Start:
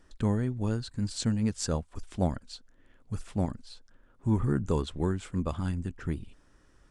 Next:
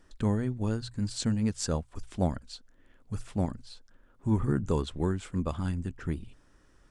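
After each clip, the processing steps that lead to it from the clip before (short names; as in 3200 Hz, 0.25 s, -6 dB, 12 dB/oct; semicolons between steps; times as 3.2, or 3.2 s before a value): notches 60/120 Hz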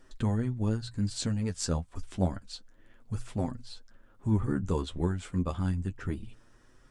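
flange 0.29 Hz, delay 7.7 ms, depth 4.2 ms, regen +29%; in parallel at -1 dB: compressor, threshold -38 dBFS, peak gain reduction 14.5 dB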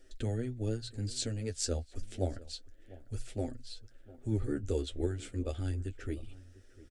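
fixed phaser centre 420 Hz, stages 4; outdoor echo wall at 120 m, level -19 dB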